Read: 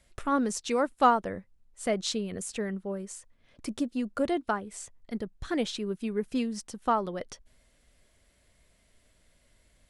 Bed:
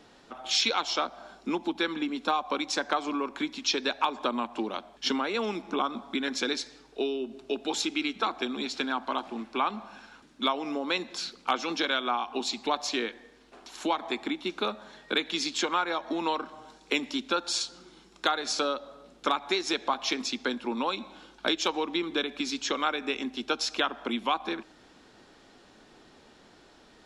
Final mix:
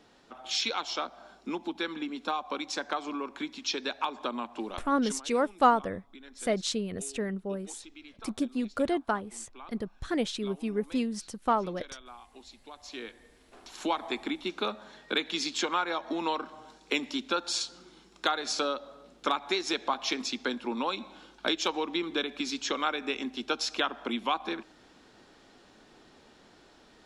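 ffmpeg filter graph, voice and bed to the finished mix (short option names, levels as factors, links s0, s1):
-filter_complex "[0:a]adelay=4600,volume=1[s0];[1:a]volume=5.01,afade=t=out:st=4.86:d=0.35:silence=0.16788,afade=t=in:st=12.75:d=0.92:silence=0.11885[s1];[s0][s1]amix=inputs=2:normalize=0"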